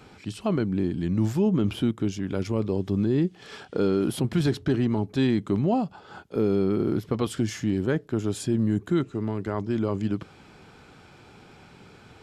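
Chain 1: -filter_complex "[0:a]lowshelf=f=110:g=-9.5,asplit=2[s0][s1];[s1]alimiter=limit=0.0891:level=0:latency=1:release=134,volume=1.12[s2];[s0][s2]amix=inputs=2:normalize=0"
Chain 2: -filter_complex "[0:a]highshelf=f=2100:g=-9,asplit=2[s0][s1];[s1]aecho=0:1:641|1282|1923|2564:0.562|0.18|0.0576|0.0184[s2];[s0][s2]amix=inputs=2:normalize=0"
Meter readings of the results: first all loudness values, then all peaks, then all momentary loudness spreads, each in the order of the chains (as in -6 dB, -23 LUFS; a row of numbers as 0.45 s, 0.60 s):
-23.5 LUFS, -25.5 LUFS; -10.0 dBFS, -10.5 dBFS; 6 LU, 9 LU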